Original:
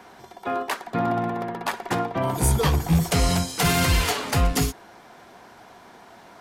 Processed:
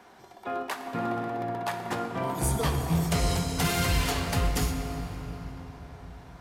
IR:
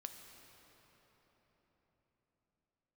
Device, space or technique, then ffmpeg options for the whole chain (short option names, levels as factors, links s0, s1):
cathedral: -filter_complex "[1:a]atrim=start_sample=2205[s0];[0:a][s0]afir=irnorm=-1:irlink=0,volume=0.891"